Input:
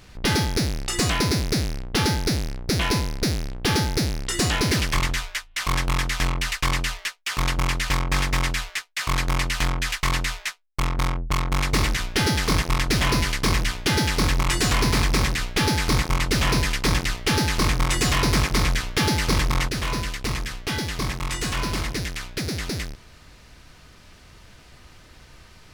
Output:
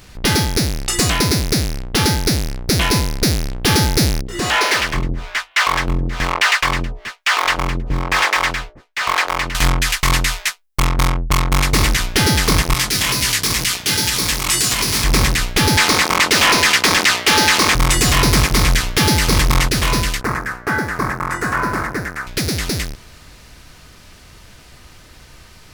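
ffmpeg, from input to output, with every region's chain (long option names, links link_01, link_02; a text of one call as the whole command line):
ffmpeg -i in.wav -filter_complex "[0:a]asettb=1/sr,asplit=3[link_01][link_02][link_03];[link_01]atrim=end=4.214[link_04];[link_02]atrim=start=4.21:end=9.55,asetpts=PTS-STARTPTS,afade=type=in:duration=0.004:curve=qsin,afade=type=out:start_time=5.336:duration=0.004:curve=qsin,asplit=2[link_05][link_06];[link_06]highpass=frequency=720:poles=1,volume=17dB,asoftclip=type=tanh:threshold=-13.5dB[link_07];[link_05][link_07]amix=inputs=2:normalize=0,lowpass=frequency=1700:poles=1,volume=-6dB,acrossover=split=430[link_08][link_09];[link_08]aeval=exprs='val(0)*(1-1/2+1/2*cos(2*PI*1.1*n/s))':channel_layout=same[link_10];[link_09]aeval=exprs='val(0)*(1-1/2-1/2*cos(2*PI*1.1*n/s))':channel_layout=same[link_11];[link_10][link_11]amix=inputs=2:normalize=0[link_12];[link_03]atrim=start=9.546[link_13];[link_04][link_12]acrossfade=duration=0.004:curve1=hsin:curve2=qsin[link_14];[link_14][link_13]acrossfade=duration=0.004:curve1=qsin:curve2=hsin,asettb=1/sr,asplit=3[link_15][link_16][link_17];[link_15]atrim=end=12.744[link_18];[link_16]atrim=start=12.74:end=15.04,asetpts=PTS-STARTPTS,afade=type=in:duration=0.004:curve=qsin,afade=type=out:start_time=2.296:duration=0.004:curve=qsin,highpass=70,highshelf=frequency=2300:gain=11,flanger=delay=15.5:depth=5:speed=2.1[link_19];[link_17]atrim=start=15.036[link_20];[link_18][link_19]acrossfade=duration=0.004:curve1=hsin:curve2=qsin[link_21];[link_21][link_20]acrossfade=duration=0.004:curve1=qsin:curve2=hsin,asettb=1/sr,asplit=3[link_22][link_23][link_24];[link_22]atrim=end=15.774[link_25];[link_23]atrim=start=15.77:end=17.75,asetpts=PTS-STARTPTS,afade=type=in:duration=0.004:curve=qsin,afade=type=out:start_time=1.976:duration=0.004:curve=qsin,highpass=frequency=86:width=0.5412,highpass=frequency=86:width=1.3066,equalizer=frequency=130:width_type=o:width=0.44:gain=-12,asplit=2[link_26][link_27];[link_27]highpass=frequency=720:poles=1,volume=16dB,asoftclip=type=tanh:threshold=-9.5dB[link_28];[link_26][link_28]amix=inputs=2:normalize=0,lowpass=frequency=5900:poles=1,volume=-6dB[link_29];[link_24]atrim=start=17.746[link_30];[link_25][link_29]acrossfade=duration=0.004:curve1=hsin:curve2=qsin[link_31];[link_31][link_30]acrossfade=duration=0.004:curve1=qsin:curve2=hsin,asettb=1/sr,asplit=3[link_32][link_33][link_34];[link_32]atrim=end=20.214[link_35];[link_33]atrim=start=20.21:end=22.27,asetpts=PTS-STARTPTS,afade=type=in:duration=0.004:curve=qsin,afade=type=out:start_time=2.056:duration=0.004:curve=qsin,highpass=frequency=190:poles=1,highshelf=frequency=2200:width_type=q:width=3:gain=-12.5[link_36];[link_34]atrim=start=22.266[link_37];[link_35][link_36]acrossfade=duration=0.004:curve1=hsin:curve2=qsin[link_38];[link_38][link_37]acrossfade=duration=0.004:curve1=qsin:curve2=hsin,highshelf=frequency=7800:gain=7.5,dynaudnorm=framelen=320:gausssize=31:maxgain=11.5dB,alimiter=level_in=10dB:limit=-1dB:release=50:level=0:latency=1,volume=-5dB" out.wav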